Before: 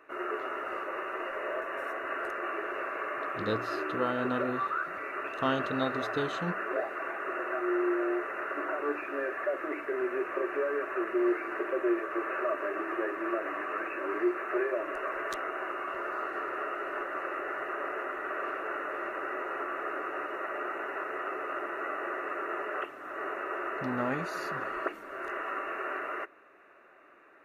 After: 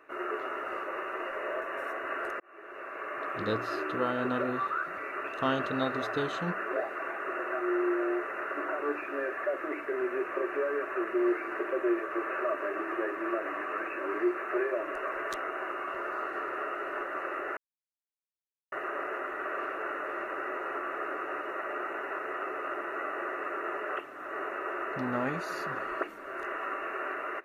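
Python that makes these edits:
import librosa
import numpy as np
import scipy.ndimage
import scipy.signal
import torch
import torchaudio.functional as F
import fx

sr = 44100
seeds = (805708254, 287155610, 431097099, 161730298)

y = fx.edit(x, sr, fx.fade_in_span(start_s=2.4, length_s=0.93),
    fx.insert_silence(at_s=17.57, length_s=1.15), tone=tone)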